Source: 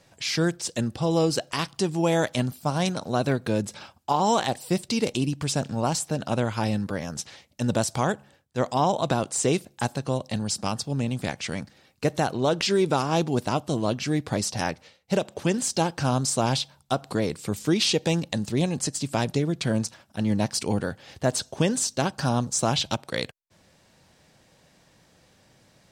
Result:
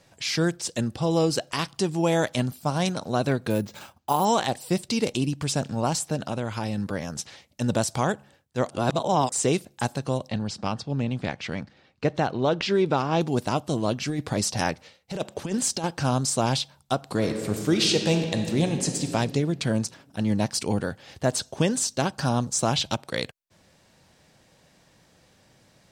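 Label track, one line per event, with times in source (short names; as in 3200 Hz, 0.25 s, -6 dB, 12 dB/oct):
3.500000	4.250000	careless resampling rate divided by 4×, down filtered, up hold
6.160000	6.780000	compressor 2.5:1, threshold -26 dBFS
8.690000	9.320000	reverse
10.290000	13.210000	LPF 3900 Hz
14.090000	15.840000	negative-ratio compressor -25 dBFS, ratio -0.5
17.080000	19.090000	reverb throw, RT60 2.3 s, DRR 4.5 dB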